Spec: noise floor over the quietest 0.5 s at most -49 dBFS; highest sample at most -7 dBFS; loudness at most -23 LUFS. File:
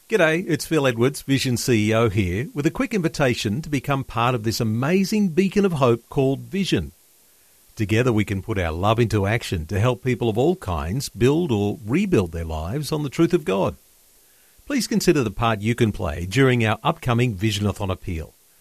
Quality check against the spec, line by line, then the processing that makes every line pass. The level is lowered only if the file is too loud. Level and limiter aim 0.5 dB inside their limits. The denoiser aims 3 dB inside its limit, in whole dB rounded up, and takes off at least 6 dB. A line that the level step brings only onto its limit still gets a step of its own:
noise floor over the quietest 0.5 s -55 dBFS: OK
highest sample -4.0 dBFS: fail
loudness -21.5 LUFS: fail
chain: gain -2 dB; limiter -7.5 dBFS

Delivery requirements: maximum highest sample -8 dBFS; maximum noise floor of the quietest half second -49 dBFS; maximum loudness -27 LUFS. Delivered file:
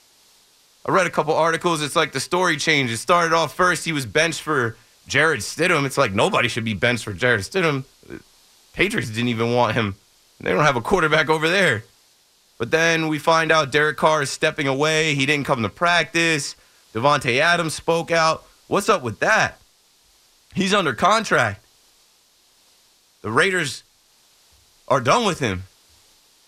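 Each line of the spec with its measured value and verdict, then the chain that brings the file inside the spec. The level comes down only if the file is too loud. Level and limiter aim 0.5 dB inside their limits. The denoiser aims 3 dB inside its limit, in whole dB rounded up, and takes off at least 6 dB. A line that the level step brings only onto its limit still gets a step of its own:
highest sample -4.0 dBFS: fail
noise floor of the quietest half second -58 dBFS: OK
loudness -19.5 LUFS: fail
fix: gain -8 dB

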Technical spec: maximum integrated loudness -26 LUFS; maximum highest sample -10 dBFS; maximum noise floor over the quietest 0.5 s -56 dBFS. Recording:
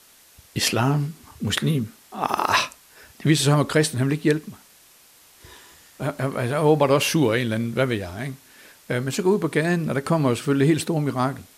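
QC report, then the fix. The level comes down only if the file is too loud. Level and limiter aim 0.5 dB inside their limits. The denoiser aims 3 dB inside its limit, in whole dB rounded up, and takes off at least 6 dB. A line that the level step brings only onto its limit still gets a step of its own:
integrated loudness -22.5 LUFS: fail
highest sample -5.5 dBFS: fail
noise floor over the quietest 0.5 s -53 dBFS: fail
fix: gain -4 dB; limiter -10.5 dBFS

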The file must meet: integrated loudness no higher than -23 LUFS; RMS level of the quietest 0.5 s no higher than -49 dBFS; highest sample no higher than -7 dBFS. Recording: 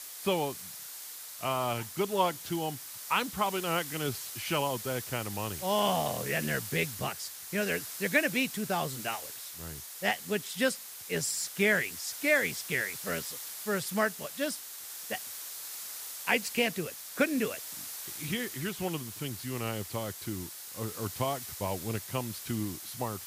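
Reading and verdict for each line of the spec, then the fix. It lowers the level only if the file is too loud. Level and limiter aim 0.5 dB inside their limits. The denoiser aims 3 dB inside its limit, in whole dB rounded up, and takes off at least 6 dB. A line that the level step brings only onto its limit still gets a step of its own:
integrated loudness -32.5 LUFS: OK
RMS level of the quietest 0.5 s -44 dBFS: fail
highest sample -12.0 dBFS: OK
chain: denoiser 8 dB, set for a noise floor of -44 dBFS

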